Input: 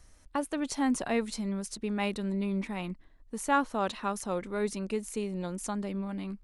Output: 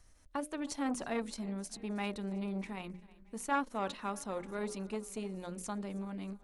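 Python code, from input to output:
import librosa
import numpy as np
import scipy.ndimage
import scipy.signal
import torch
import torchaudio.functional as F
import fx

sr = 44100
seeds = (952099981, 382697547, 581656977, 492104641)

y = fx.hum_notches(x, sr, base_hz=60, count=10)
y = fx.echo_feedback(y, sr, ms=317, feedback_pct=59, wet_db=-22.0)
y = fx.transformer_sat(y, sr, knee_hz=730.0)
y = F.gain(torch.from_numpy(y), -4.5).numpy()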